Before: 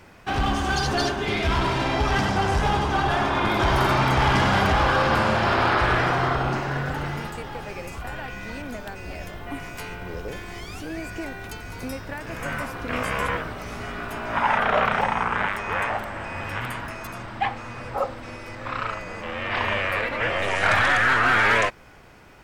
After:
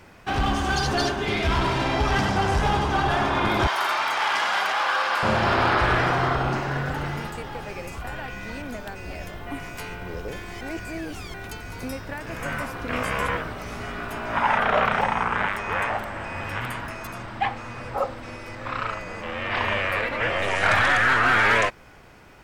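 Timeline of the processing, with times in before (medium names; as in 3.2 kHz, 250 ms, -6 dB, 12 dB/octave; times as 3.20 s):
3.67–5.23 s: high-pass 880 Hz
10.61–11.34 s: reverse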